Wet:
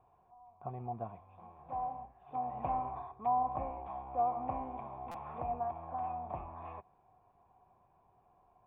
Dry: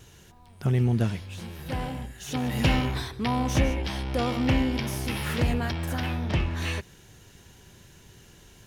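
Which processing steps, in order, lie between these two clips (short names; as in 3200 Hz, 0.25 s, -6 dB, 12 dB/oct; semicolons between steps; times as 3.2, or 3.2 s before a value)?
vocal tract filter a; treble ducked by the level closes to 2400 Hz, closed at -36 dBFS; stuck buffer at 5.11, samples 256, times 5; gain +5 dB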